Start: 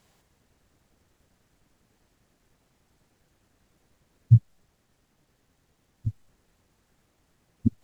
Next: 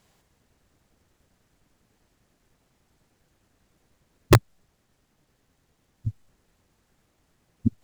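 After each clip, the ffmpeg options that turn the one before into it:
ffmpeg -i in.wav -af "aeval=exprs='(mod(2.24*val(0)+1,2)-1)/2.24':channel_layout=same" out.wav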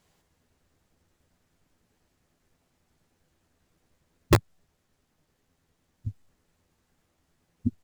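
ffmpeg -i in.wav -filter_complex "[0:a]asplit=2[link_01][link_02];[link_02]adelay=12,volume=-8dB[link_03];[link_01][link_03]amix=inputs=2:normalize=0,volume=-4.5dB" out.wav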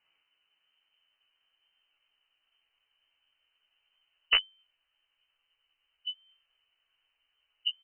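ffmpeg -i in.wav -filter_complex "[0:a]lowpass=frequency=2600:width_type=q:width=0.5098,lowpass=frequency=2600:width_type=q:width=0.6013,lowpass=frequency=2600:width_type=q:width=0.9,lowpass=frequency=2600:width_type=q:width=2.563,afreqshift=-3100,asubboost=boost=9:cutoff=60,asplit=2[link_01][link_02];[link_02]adelay=18,volume=-4dB[link_03];[link_01][link_03]amix=inputs=2:normalize=0,volume=-6dB" out.wav

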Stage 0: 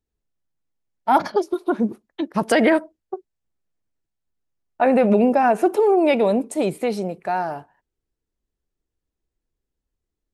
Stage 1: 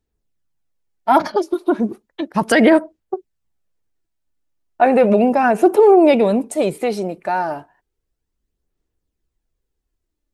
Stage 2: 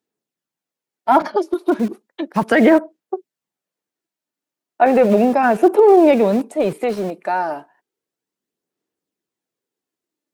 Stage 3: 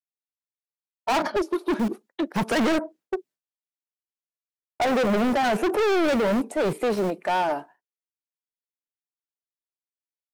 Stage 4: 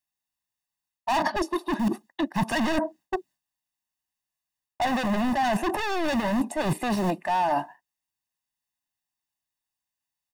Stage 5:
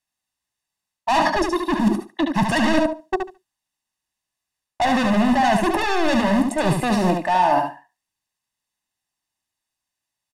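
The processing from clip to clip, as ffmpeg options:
ffmpeg -i in.wav -af "aphaser=in_gain=1:out_gain=1:delay=3.4:decay=0.34:speed=0.34:type=sinusoidal,volume=3dB" out.wav
ffmpeg -i in.wav -filter_complex "[0:a]acrossover=split=170|2900[link_01][link_02][link_03];[link_01]acrusher=bits=5:mix=0:aa=0.000001[link_04];[link_03]acompressor=threshold=-43dB:ratio=6[link_05];[link_04][link_02][link_05]amix=inputs=3:normalize=0" out.wav
ffmpeg -i in.wav -af "agate=range=-33dB:threshold=-42dB:ratio=3:detection=peak,volume=20dB,asoftclip=hard,volume=-20dB" out.wav
ffmpeg -i in.wav -af "aecho=1:1:1.1:0.87,areverse,acompressor=threshold=-27dB:ratio=10,areverse,volume=5.5dB" out.wav
ffmpeg -i in.wav -filter_complex "[0:a]lowpass=11000,asplit=2[link_01][link_02];[link_02]aecho=0:1:72|144|216:0.562|0.09|0.0144[link_03];[link_01][link_03]amix=inputs=2:normalize=0,volume=5.5dB" out.wav

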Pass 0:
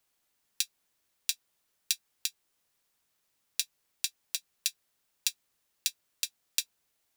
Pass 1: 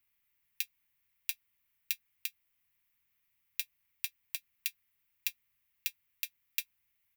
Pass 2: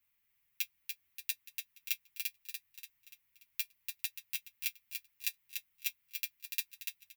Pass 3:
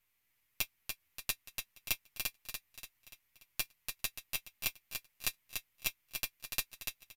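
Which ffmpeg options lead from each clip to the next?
ffmpeg -i in.wav -af "firequalizer=gain_entry='entry(110,0);entry(150,-5);entry(520,-24);entry(980,-8);entry(1500,-9);entry(2100,2);entry(3900,-12);entry(7900,-14);entry(14000,1)':delay=0.05:min_phase=1,volume=1.5dB" out.wav
ffmpeg -i in.wav -filter_complex "[0:a]asplit=2[link_01][link_02];[link_02]aecho=0:1:290|580|870|1160|1450|1740:0.531|0.25|0.117|0.0551|0.0259|0.0122[link_03];[link_01][link_03]amix=inputs=2:normalize=0,asplit=2[link_04][link_05];[link_05]adelay=8.2,afreqshift=0.75[link_06];[link_04][link_06]amix=inputs=2:normalize=1,volume=2.5dB" out.wav
ffmpeg -i in.wav -af "aeval=exprs='if(lt(val(0),0),0.447*val(0),val(0))':channel_layout=same,aresample=32000,aresample=44100,volume=5dB" out.wav

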